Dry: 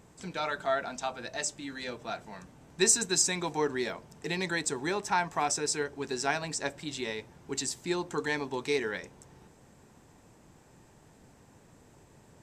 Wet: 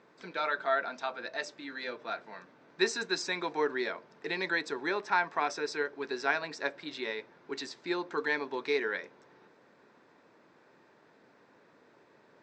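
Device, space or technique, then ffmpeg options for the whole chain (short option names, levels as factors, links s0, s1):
phone earpiece: -af "highpass=360,equalizer=f=780:t=q:w=4:g=-6,equalizer=f=1500:t=q:w=4:g=3,equalizer=f=3000:t=q:w=4:g=-7,lowpass=f=4200:w=0.5412,lowpass=f=4200:w=1.3066,volume=1.19"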